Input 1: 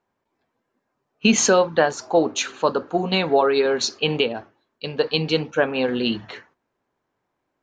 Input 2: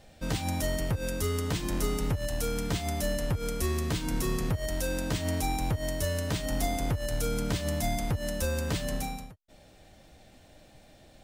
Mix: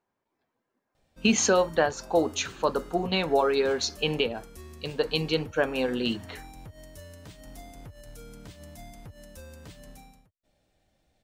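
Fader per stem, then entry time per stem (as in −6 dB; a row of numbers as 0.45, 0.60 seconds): −5.5, −16.0 decibels; 0.00, 0.95 seconds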